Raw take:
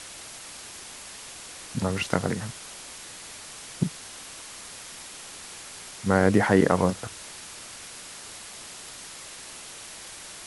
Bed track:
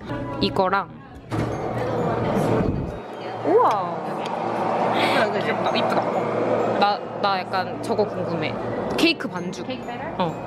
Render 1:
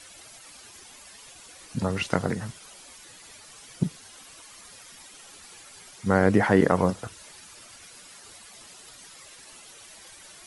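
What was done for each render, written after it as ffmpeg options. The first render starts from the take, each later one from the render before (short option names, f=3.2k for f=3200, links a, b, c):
-af "afftdn=nr=11:nf=-43"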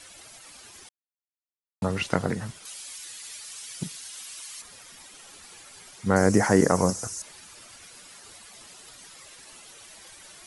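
-filter_complex "[0:a]asettb=1/sr,asplit=3[a][b][c];[a]atrim=end=2.654[d];[b]atrim=start=2.65:end=4.62,asetpts=PTS-STARTPTS,afade=t=in:d=0.004:c=qsin,afade=t=out:st=1.966:d=0.004:c=qsin,tiltshelf=f=1.4k:g=-9[e];[c]atrim=start=4.616[f];[d][e]acrossfade=d=0.004:c1=hsin:c2=qsin[g];[g][f]acrossfade=d=0.004:c1=qsin:c2=hsin,asettb=1/sr,asplit=3[h][i][j];[h]atrim=end=6.164[k];[i]atrim=start=6.16:end=7.22,asetpts=PTS-STARTPTS,afade=t=in:d=0.004:c=qsin,afade=t=out:st=1.056:d=0.004:c=qsin,highshelf=f=4.6k:t=q:w=3:g=10[l];[j]atrim=start=7.216[m];[k][l]acrossfade=d=0.004:c1=hsin:c2=qsin[n];[n][m]acrossfade=d=0.004:c1=qsin:c2=hsin,asplit=3[o][p][q];[o]atrim=end=0.89,asetpts=PTS-STARTPTS,afade=t=out:st=0.886:d=0.004:c=hsin[r];[p]atrim=start=0.89:end=1.82,asetpts=PTS-STARTPTS,volume=0[s];[q]atrim=start=1.82,asetpts=PTS-STARTPTS,afade=t=in:d=0.004:c=hsin[t];[r][s][t]concat=n=3:v=0:a=1"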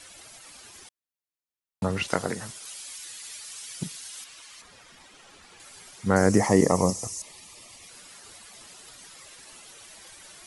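-filter_complex "[0:a]asettb=1/sr,asplit=3[a][b][c];[a]atrim=end=2.084[d];[b]atrim=start=2.08:end=2.65,asetpts=PTS-STARTPTS,afade=t=in:d=0.004:c=qsin,afade=t=out:st=0.566:d=0.004:c=qsin,bass=f=250:g=-8,treble=f=4k:g=7[e];[c]atrim=start=2.646[f];[d][e]acrossfade=d=0.004:c1=hsin:c2=qsin[g];[g][f]acrossfade=d=0.004:c1=qsin:c2=hsin,asettb=1/sr,asplit=3[h][i][j];[h]atrim=end=4.244[k];[i]atrim=start=4.24:end=5.6,asetpts=PTS-STARTPTS,afade=t=in:d=0.004:c=qsin,afade=t=out:st=1.356:d=0.004:c=qsin,aemphasis=mode=reproduction:type=50fm[l];[j]atrim=start=5.596[m];[k][l]acrossfade=d=0.004:c1=hsin:c2=qsin[n];[n][m]acrossfade=d=0.004:c1=qsin:c2=hsin,asettb=1/sr,asplit=3[o][p][q];[o]atrim=end=6.404[r];[p]atrim=start=6.4:end=7.89,asetpts=PTS-STARTPTS,afade=t=in:d=0.004:c=qsin,afade=t=out:st=1.486:d=0.004:c=qsin,asuperstop=centerf=1500:order=4:qfactor=2.7[s];[q]atrim=start=7.886[t];[r][s]acrossfade=d=0.004:c1=hsin:c2=qsin[u];[u][t]acrossfade=d=0.004:c1=qsin:c2=hsin"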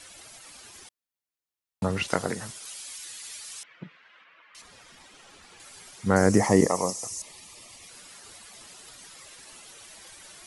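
-filter_complex "[0:a]asettb=1/sr,asplit=3[a][b][c];[a]atrim=end=3.634[d];[b]atrim=start=3.63:end=4.55,asetpts=PTS-STARTPTS,afade=t=in:d=0.004:c=qsin,afade=t=out:st=0.916:d=0.004:c=qsin,highpass=250,equalizer=f=260:t=q:w=4:g=-8,equalizer=f=390:t=q:w=4:g=-6,equalizer=f=780:t=q:w=4:g=-7,lowpass=f=2.2k:w=0.5412,lowpass=f=2.2k:w=1.3066[e];[c]atrim=start=4.546[f];[d][e]acrossfade=d=0.004:c1=hsin:c2=qsin[g];[g][f]acrossfade=d=0.004:c1=qsin:c2=hsin,asettb=1/sr,asplit=3[h][i][j];[h]atrim=end=6.664[k];[i]atrim=start=6.66:end=7.11,asetpts=PTS-STARTPTS,afade=t=in:d=0.004:c=qsin,afade=t=out:st=0.446:d=0.004:c=qsin,highpass=f=570:p=1[l];[j]atrim=start=7.106[m];[k][l]acrossfade=d=0.004:c1=hsin:c2=qsin[n];[n][m]acrossfade=d=0.004:c1=qsin:c2=hsin"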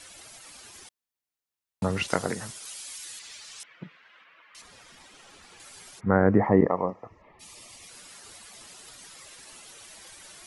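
-filter_complex "[0:a]asettb=1/sr,asplit=3[a][b][c];[a]atrim=end=3.194[d];[b]atrim=start=3.19:end=3.6,asetpts=PTS-STARTPTS,afade=t=in:d=0.004:c=qsin,afade=t=out:st=0.406:d=0.004:c=qsin,lowpass=6k[e];[c]atrim=start=3.596[f];[d][e]acrossfade=d=0.004:c1=hsin:c2=qsin[g];[g][f]acrossfade=d=0.004:c1=qsin:c2=hsin,asplit=3[h][i][j];[h]afade=t=out:st=5.99:d=0.02[k];[i]lowpass=f=1.8k:w=0.5412,lowpass=f=1.8k:w=1.3066,afade=t=in:st=5.99:d=0.02,afade=t=out:st=7.39:d=0.02[l];[j]afade=t=in:st=7.39:d=0.02[m];[k][l][m]amix=inputs=3:normalize=0"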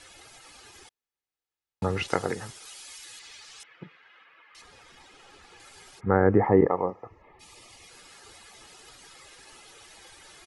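-af "lowpass=f=4k:p=1,aecho=1:1:2.4:0.39"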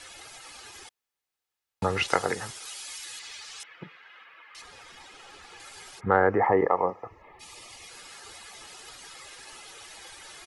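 -filter_complex "[0:a]acrossover=split=530[a][b];[a]alimiter=limit=-21.5dB:level=0:latency=1:release=429[c];[b]acontrast=23[d];[c][d]amix=inputs=2:normalize=0"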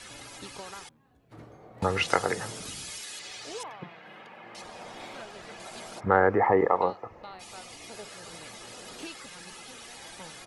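-filter_complex "[1:a]volume=-24dB[a];[0:a][a]amix=inputs=2:normalize=0"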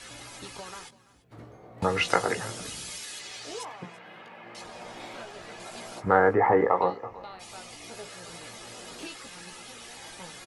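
-filter_complex "[0:a]asplit=2[a][b];[b]adelay=17,volume=-7dB[c];[a][c]amix=inputs=2:normalize=0,aecho=1:1:336:0.1"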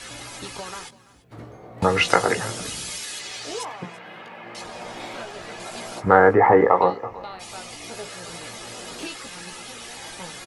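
-af "volume=6.5dB,alimiter=limit=-1dB:level=0:latency=1"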